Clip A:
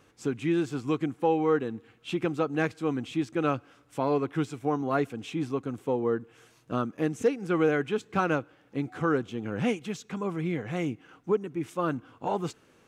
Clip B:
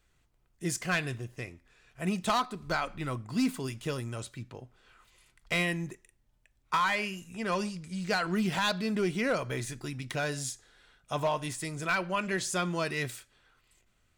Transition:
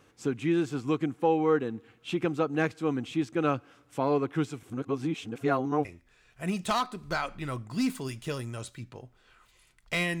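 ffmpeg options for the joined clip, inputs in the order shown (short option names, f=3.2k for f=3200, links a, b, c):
-filter_complex "[0:a]apad=whole_dur=10.2,atrim=end=10.2,asplit=2[a][b];[a]atrim=end=4.632[c];[b]atrim=start=4.628:end=5.852,asetpts=PTS-STARTPTS,areverse[d];[1:a]atrim=start=1.438:end=5.79[e];[c][d]acrossfade=d=0.004:c1=hsin:c2=hsin[f];[f][e]acrossfade=d=0.004:c1=hsin:c2=hsin"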